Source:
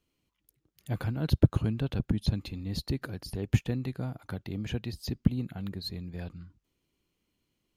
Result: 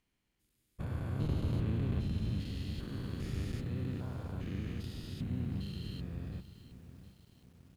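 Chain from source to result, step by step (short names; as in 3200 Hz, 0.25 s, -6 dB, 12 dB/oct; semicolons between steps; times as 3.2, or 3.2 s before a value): stepped spectrum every 0.4 s; harmoniser -7 st -6 dB, -5 st -1 dB; lo-fi delay 0.715 s, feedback 55%, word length 9-bit, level -14 dB; gain -3.5 dB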